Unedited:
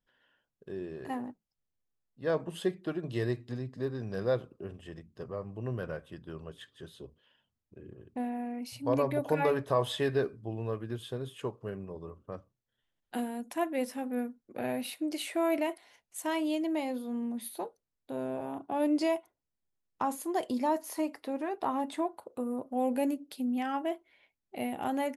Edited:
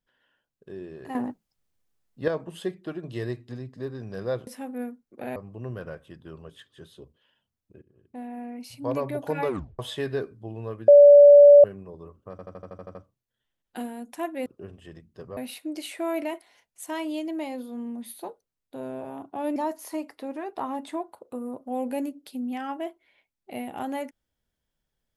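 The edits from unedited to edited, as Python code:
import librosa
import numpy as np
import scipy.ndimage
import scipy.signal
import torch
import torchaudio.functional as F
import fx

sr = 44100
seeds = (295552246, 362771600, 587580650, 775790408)

y = fx.edit(x, sr, fx.clip_gain(start_s=1.15, length_s=1.13, db=9.0),
    fx.swap(start_s=4.47, length_s=0.91, other_s=13.84, other_length_s=0.89),
    fx.fade_in_from(start_s=7.84, length_s=0.62, floor_db=-22.0),
    fx.tape_stop(start_s=9.5, length_s=0.31),
    fx.bleep(start_s=10.9, length_s=0.76, hz=577.0, db=-7.5),
    fx.stutter(start_s=12.33, slice_s=0.08, count=9),
    fx.cut(start_s=18.92, length_s=1.69), tone=tone)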